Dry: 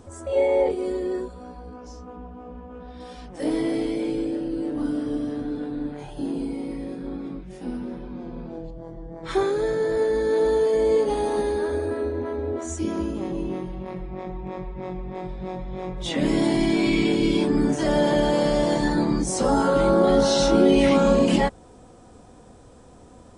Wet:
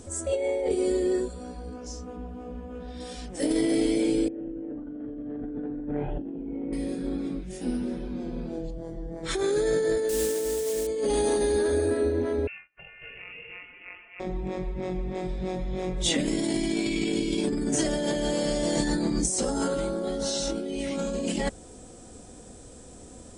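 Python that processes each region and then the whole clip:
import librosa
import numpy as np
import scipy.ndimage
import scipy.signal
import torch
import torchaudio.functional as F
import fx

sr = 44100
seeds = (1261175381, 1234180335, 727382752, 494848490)

y = fx.chain(x, sr, fx.gaussian_blur(sigma=4.7),
    fx.over_compress(threshold_db=-36.0, ratio=-1.0), at=(4.28, 6.73))
y = fx.chain(y, sr, fx.lowpass(hz=2500.0, slope=6),
    fx.quant_dither(seeds[0], bits=6, dither='triangular'), at=(10.09, 10.87))
y = fx.chain(y, sr, fx.highpass(hz=1300.0, slope=12),
    fx.over_compress(threshold_db=-46.0, ratio=-0.5),
    fx.freq_invert(carrier_hz=3100), at=(12.47, 14.2))
y = fx.graphic_eq_10(y, sr, hz=(125, 1000, 8000), db=(-4, -9, 10))
y = fx.over_compress(y, sr, threshold_db=-26.0, ratio=-1.0)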